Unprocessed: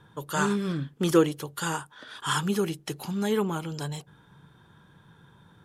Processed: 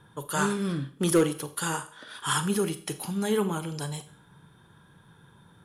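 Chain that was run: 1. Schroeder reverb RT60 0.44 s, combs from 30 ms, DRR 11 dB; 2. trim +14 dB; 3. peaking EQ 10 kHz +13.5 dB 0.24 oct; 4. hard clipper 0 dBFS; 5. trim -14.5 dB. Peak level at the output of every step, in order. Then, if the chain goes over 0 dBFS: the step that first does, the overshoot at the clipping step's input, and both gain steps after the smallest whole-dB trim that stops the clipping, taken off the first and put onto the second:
-8.0 dBFS, +6.0 dBFS, +6.0 dBFS, 0.0 dBFS, -14.5 dBFS; step 2, 6.0 dB; step 2 +8 dB, step 5 -8.5 dB

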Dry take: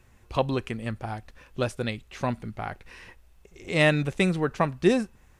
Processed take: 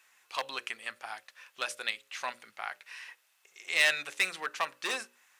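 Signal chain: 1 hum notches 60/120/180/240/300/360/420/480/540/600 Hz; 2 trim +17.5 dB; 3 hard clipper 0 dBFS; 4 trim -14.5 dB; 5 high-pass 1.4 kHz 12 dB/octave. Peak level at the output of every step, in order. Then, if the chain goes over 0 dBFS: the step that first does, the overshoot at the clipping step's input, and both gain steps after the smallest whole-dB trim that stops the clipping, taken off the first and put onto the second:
-9.5 dBFS, +8.0 dBFS, 0.0 dBFS, -14.5 dBFS, -10.0 dBFS; step 2, 8.0 dB; step 2 +9.5 dB, step 4 -6.5 dB

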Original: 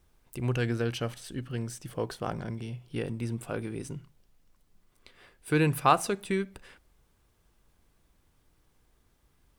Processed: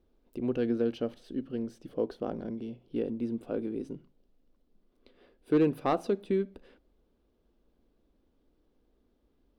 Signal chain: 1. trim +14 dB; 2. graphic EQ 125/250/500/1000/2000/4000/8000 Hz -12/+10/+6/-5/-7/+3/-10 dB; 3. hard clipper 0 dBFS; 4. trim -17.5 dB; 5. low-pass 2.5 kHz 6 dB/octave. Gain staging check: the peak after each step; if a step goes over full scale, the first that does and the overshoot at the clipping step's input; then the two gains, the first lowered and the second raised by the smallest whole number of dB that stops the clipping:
+6.0 dBFS, +6.0 dBFS, 0.0 dBFS, -17.5 dBFS, -17.5 dBFS; step 1, 6.0 dB; step 1 +8 dB, step 4 -11.5 dB

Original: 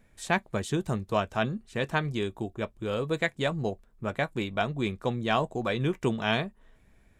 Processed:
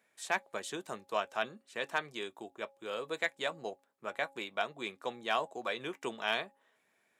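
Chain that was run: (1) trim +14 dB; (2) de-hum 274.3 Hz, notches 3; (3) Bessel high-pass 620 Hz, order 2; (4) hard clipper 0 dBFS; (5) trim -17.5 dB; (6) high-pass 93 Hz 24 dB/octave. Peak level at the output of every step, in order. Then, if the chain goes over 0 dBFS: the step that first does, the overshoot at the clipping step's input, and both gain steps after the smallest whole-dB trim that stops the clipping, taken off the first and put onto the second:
+3.5 dBFS, +3.5 dBFS, +4.0 dBFS, 0.0 dBFS, -17.5 dBFS, -16.5 dBFS; step 1, 4.0 dB; step 1 +10 dB, step 5 -13.5 dB

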